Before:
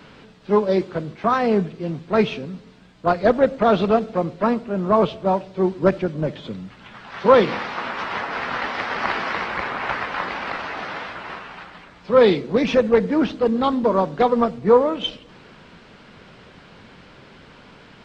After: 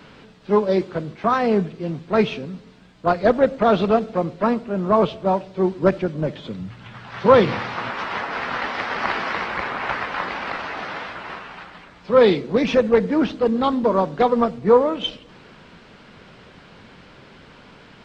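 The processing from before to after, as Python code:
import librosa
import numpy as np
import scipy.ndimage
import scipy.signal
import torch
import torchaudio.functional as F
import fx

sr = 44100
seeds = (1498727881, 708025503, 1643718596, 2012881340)

y = fx.peak_eq(x, sr, hz=110.0, db=13.5, octaves=0.77, at=(6.59, 7.9))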